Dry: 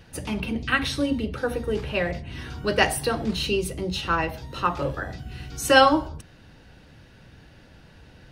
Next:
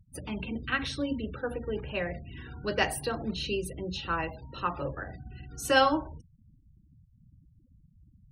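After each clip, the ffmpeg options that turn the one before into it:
ffmpeg -i in.wav -af "afftfilt=real='re*gte(hypot(re,im),0.0141)':imag='im*gte(hypot(re,im),0.0141)':win_size=1024:overlap=0.75,volume=-7dB" out.wav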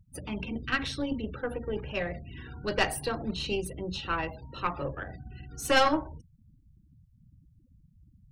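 ffmpeg -i in.wav -af "aeval=exprs='(tanh(7.94*val(0)+0.7)-tanh(0.7))/7.94':channel_layout=same,volume=4dB" out.wav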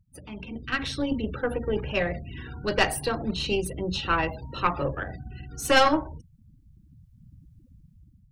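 ffmpeg -i in.wav -af "dynaudnorm=framelen=330:gausssize=5:maxgain=12.5dB,volume=-5dB" out.wav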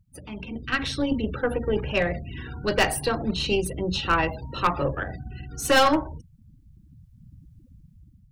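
ffmpeg -i in.wav -af "asoftclip=type=hard:threshold=-13.5dB,volume=2.5dB" out.wav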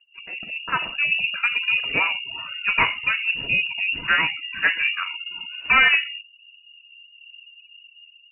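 ffmpeg -i in.wav -af "lowpass=frequency=2500:width_type=q:width=0.5098,lowpass=frequency=2500:width_type=q:width=0.6013,lowpass=frequency=2500:width_type=q:width=0.9,lowpass=frequency=2500:width_type=q:width=2.563,afreqshift=-2900,volume=2.5dB" out.wav

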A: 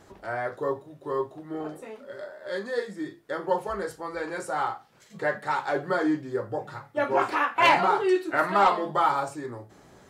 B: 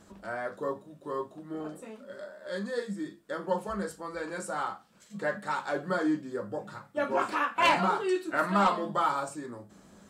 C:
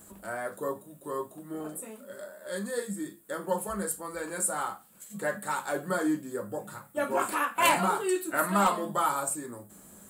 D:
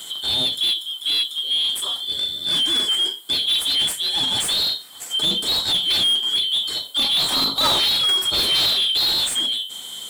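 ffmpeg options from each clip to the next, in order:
ffmpeg -i in.wav -af "equalizer=frequency=125:width_type=o:width=0.33:gain=-10,equalizer=frequency=200:width_type=o:width=0.33:gain=11,equalizer=frequency=400:width_type=o:width=0.33:gain=-5,equalizer=frequency=800:width_type=o:width=0.33:gain=-6,equalizer=frequency=2000:width_type=o:width=0.33:gain=-5,equalizer=frequency=8000:width_type=o:width=0.33:gain=6,volume=-2.5dB" out.wav
ffmpeg -i in.wav -af "aexciter=amount=11.1:drive=4.3:freq=7900" out.wav
ffmpeg -i in.wav -filter_complex "[0:a]afftfilt=real='real(if(lt(b,272),68*(eq(floor(b/68),0)*1+eq(floor(b/68),1)*3+eq(floor(b/68),2)*0+eq(floor(b/68),3)*2)+mod(b,68),b),0)':imag='imag(if(lt(b,272),68*(eq(floor(b/68),0)*1+eq(floor(b/68),1)*3+eq(floor(b/68),2)*0+eq(floor(b/68),3)*2)+mod(b,68),b),0)':win_size=2048:overlap=0.75,asplit=2[link_01][link_02];[link_02]highpass=frequency=720:poles=1,volume=31dB,asoftclip=type=tanh:threshold=-7dB[link_03];[link_01][link_03]amix=inputs=2:normalize=0,lowpass=frequency=2400:poles=1,volume=-6dB" out.wav

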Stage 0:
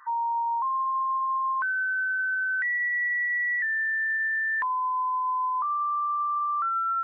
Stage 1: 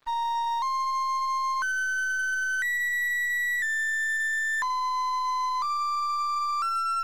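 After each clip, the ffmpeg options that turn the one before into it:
ffmpeg -i in.wav -af "bass=frequency=250:gain=-4,treble=frequency=4000:gain=2,aeval=exprs='0.075*(cos(1*acos(clip(val(0)/0.075,-1,1)))-cos(1*PI/2))+0.00106*(cos(4*acos(clip(val(0)/0.075,-1,1)))-cos(4*PI/2))+0.00944*(cos(6*acos(clip(val(0)/0.075,-1,1)))-cos(6*PI/2))+0.00133*(cos(8*acos(clip(val(0)/0.075,-1,1)))-cos(8*PI/2))':channel_layout=same,aeval=exprs='sgn(val(0))*max(abs(val(0))-0.00422,0)':channel_layout=same" out.wav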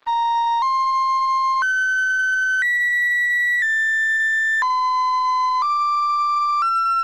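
ffmpeg -i in.wav -filter_complex "[0:a]acrossover=split=220 4800:gain=0.178 1 0.224[link_01][link_02][link_03];[link_01][link_02][link_03]amix=inputs=3:normalize=0,volume=8.5dB" out.wav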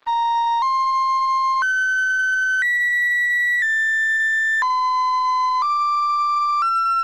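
ffmpeg -i in.wav -af anull out.wav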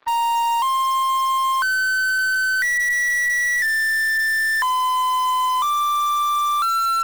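ffmpeg -i in.wav -filter_complex "[0:a]lowpass=frequency=3100:poles=1,asplit=2[link_01][link_02];[link_02]aeval=exprs='(mod(7.94*val(0)+1,2)-1)/7.94':channel_layout=same,volume=-11.5dB[link_03];[link_01][link_03]amix=inputs=2:normalize=0" out.wav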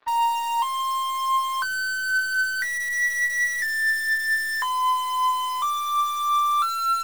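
ffmpeg -i in.wav -af "flanger=delay=9.4:depth=1.7:regen=42:speed=0.54:shape=sinusoidal" out.wav

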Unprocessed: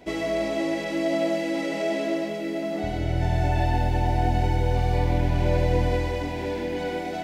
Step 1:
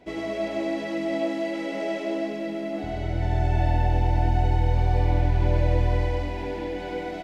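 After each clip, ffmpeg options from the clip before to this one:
ffmpeg -i in.wav -filter_complex "[0:a]highshelf=frequency=6100:gain=-9.5,asplit=2[link_01][link_02];[link_02]aecho=0:1:100|220|364|536.8|744.2:0.631|0.398|0.251|0.158|0.1[link_03];[link_01][link_03]amix=inputs=2:normalize=0,volume=-4dB" out.wav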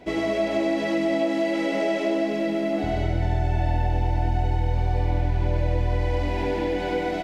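ffmpeg -i in.wav -af "acompressor=threshold=-26dB:ratio=4,volume=6.5dB" out.wav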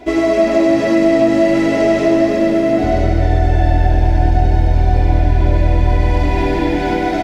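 ffmpeg -i in.wav -filter_complex "[0:a]aecho=1:1:2.9:0.66,asplit=6[link_01][link_02][link_03][link_04][link_05][link_06];[link_02]adelay=301,afreqshift=-100,volume=-11.5dB[link_07];[link_03]adelay=602,afreqshift=-200,volume=-18.1dB[link_08];[link_04]adelay=903,afreqshift=-300,volume=-24.6dB[link_09];[link_05]adelay=1204,afreqshift=-400,volume=-31.2dB[link_10];[link_06]adelay=1505,afreqshift=-500,volume=-37.7dB[link_11];[link_01][link_07][link_08][link_09][link_10][link_11]amix=inputs=6:normalize=0,volume=7.5dB" out.wav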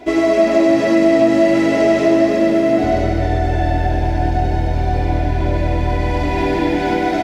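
ffmpeg -i in.wav -af "lowshelf=frequency=68:gain=-10.5" out.wav

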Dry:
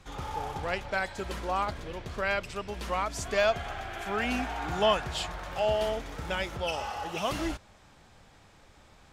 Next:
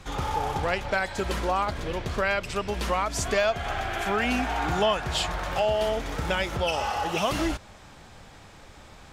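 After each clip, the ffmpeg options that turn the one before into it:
ffmpeg -i in.wav -af "acompressor=threshold=-32dB:ratio=2.5,volume=8.5dB" out.wav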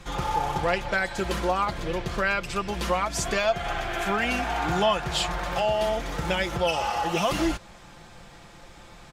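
ffmpeg -i in.wav -af "aecho=1:1:5.8:0.49" out.wav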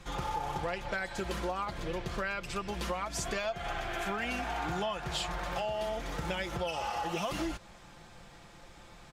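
ffmpeg -i in.wav -af "acompressor=threshold=-25dB:ratio=6,volume=-5.5dB" out.wav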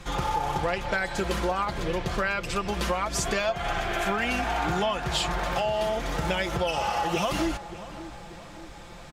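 ffmpeg -i in.wav -filter_complex "[0:a]asplit=2[link_01][link_02];[link_02]adelay=585,lowpass=frequency=1800:poles=1,volume=-14dB,asplit=2[link_03][link_04];[link_04]adelay=585,lowpass=frequency=1800:poles=1,volume=0.54,asplit=2[link_05][link_06];[link_06]adelay=585,lowpass=frequency=1800:poles=1,volume=0.54,asplit=2[link_07][link_08];[link_08]adelay=585,lowpass=frequency=1800:poles=1,volume=0.54,asplit=2[link_09][link_10];[link_10]adelay=585,lowpass=frequency=1800:poles=1,volume=0.54[link_11];[link_01][link_03][link_05][link_07][link_09][link_11]amix=inputs=6:normalize=0,volume=7.5dB" out.wav

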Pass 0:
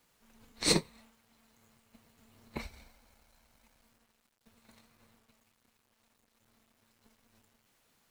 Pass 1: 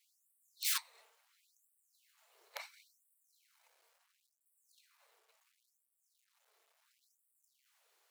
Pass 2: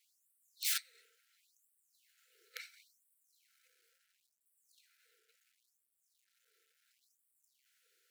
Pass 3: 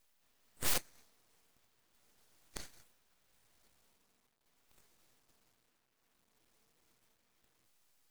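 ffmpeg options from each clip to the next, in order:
ffmpeg -i in.wav -af "aeval=exprs='(mod(15.8*val(0)+1,2)-1)/15.8':channel_layout=same,afftfilt=real='re*gte(b*sr/1024,340*pow(7900/340,0.5+0.5*sin(2*PI*0.72*pts/sr)))':imag='im*gte(b*sr/1024,340*pow(7900/340,0.5+0.5*sin(2*PI*0.72*pts/sr)))':win_size=1024:overlap=0.75,volume=-2.5dB" out.wav
ffmpeg -i in.wav -af "afftfilt=real='re*(1-between(b*sr/4096,530,1300))':imag='im*(1-between(b*sr/4096,530,1300))':win_size=4096:overlap=0.75" out.wav
ffmpeg -i in.wav -af "highpass=frequency=1400:width=0.5412,highpass=frequency=1400:width=1.3066,aeval=exprs='abs(val(0))':channel_layout=same,volume=4dB" out.wav

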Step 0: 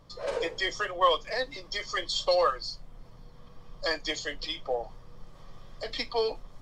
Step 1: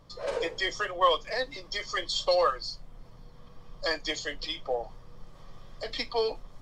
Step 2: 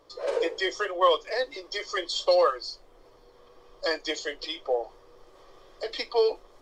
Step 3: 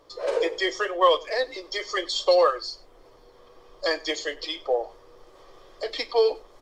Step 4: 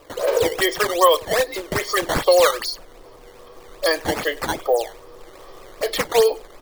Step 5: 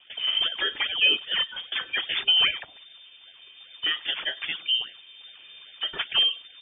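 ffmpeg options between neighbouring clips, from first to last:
ffmpeg -i in.wav -af anull out.wav
ffmpeg -i in.wav -af "lowshelf=frequency=260:width_type=q:width=3:gain=-12" out.wav
ffmpeg -i in.wav -af "aecho=1:1:98:0.075,volume=2.5dB" out.wav
ffmpeg -i in.wav -filter_complex "[0:a]asplit=2[link_01][link_02];[link_02]acompressor=threshold=-28dB:ratio=6,volume=1.5dB[link_03];[link_01][link_03]amix=inputs=2:normalize=0,acrusher=samples=10:mix=1:aa=0.000001:lfo=1:lforange=16:lforate=2.5,volume=2dB" out.wav
ffmpeg -i in.wav -af "lowpass=frequency=3100:width_type=q:width=0.5098,lowpass=frequency=3100:width_type=q:width=0.6013,lowpass=frequency=3100:width_type=q:width=0.9,lowpass=frequency=3100:width_type=q:width=2.563,afreqshift=-3600,volume=-6.5dB" out.wav

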